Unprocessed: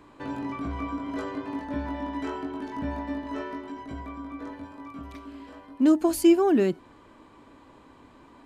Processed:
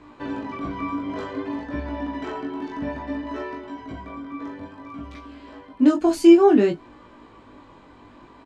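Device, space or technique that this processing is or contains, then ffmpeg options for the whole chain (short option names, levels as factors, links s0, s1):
double-tracked vocal: -filter_complex "[0:a]lowpass=6200,asplit=2[s0][s1];[s1]adelay=20,volume=0.398[s2];[s0][s2]amix=inputs=2:normalize=0,flanger=delay=16.5:depth=4.9:speed=0.57,volume=2.24"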